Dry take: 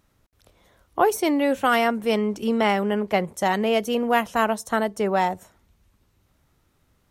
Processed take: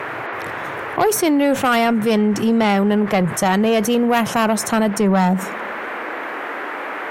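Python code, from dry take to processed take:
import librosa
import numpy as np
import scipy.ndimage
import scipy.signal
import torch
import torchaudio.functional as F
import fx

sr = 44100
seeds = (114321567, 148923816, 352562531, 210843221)

y = fx.filter_sweep_highpass(x, sr, from_hz=130.0, to_hz=310.0, start_s=4.52, end_s=6.38, q=4.9)
y = fx.dmg_noise_band(y, sr, seeds[0], low_hz=290.0, high_hz=2000.0, level_db=-45.0)
y = fx.cheby_harmonics(y, sr, harmonics=(5,), levels_db=(-18,), full_scale_db=-6.5)
y = fx.env_flatten(y, sr, amount_pct=50)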